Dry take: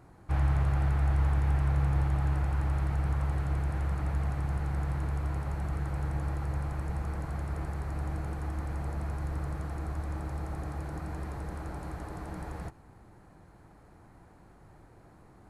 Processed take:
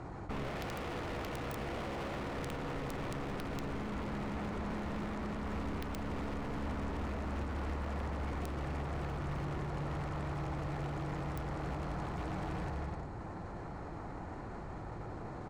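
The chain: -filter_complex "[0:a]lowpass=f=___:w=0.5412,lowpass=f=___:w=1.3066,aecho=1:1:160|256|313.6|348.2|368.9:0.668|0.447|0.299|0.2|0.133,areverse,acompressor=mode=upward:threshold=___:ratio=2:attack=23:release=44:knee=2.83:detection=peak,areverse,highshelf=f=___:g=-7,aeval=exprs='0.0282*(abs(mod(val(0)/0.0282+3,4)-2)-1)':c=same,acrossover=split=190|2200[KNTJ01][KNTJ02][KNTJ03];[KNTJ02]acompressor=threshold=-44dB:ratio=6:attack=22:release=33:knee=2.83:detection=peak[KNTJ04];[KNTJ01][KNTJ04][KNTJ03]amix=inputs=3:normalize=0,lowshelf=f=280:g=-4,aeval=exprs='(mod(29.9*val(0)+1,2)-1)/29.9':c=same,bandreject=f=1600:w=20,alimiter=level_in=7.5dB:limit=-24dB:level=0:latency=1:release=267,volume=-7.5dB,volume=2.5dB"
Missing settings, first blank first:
7400, 7400, -34dB, 2300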